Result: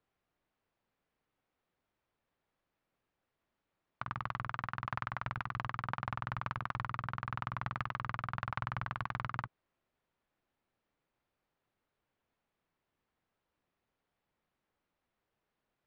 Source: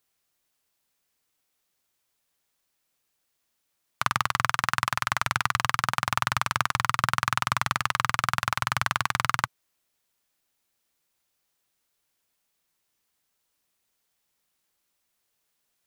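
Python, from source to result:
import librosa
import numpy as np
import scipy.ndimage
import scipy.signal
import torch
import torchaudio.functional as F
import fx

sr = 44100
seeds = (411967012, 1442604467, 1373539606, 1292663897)

y = fx.over_compress(x, sr, threshold_db=-31.0, ratio=-1.0)
y = fx.spacing_loss(y, sr, db_at_10k=43)
y = y * 10.0 ** (-2.0 / 20.0)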